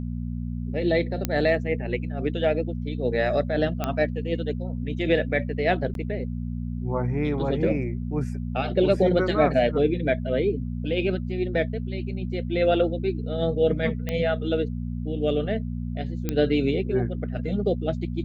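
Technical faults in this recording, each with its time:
hum 60 Hz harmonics 4 -30 dBFS
1.25 s: pop -9 dBFS
3.84 s: pop -12 dBFS
5.94–5.95 s: dropout 12 ms
14.09 s: pop -15 dBFS
16.29 s: pop -12 dBFS

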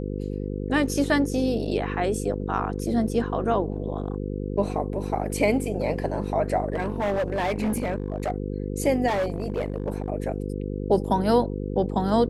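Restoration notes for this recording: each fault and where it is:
buzz 50 Hz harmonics 10 -30 dBFS
6.72–8.31 s: clipped -21.5 dBFS
9.07–10.08 s: clipped -21.5 dBFS

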